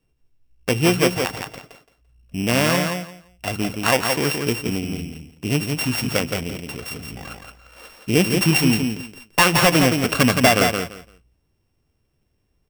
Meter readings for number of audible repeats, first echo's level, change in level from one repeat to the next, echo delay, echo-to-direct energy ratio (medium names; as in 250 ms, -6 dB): 3, -5.0 dB, -14.5 dB, 170 ms, -5.0 dB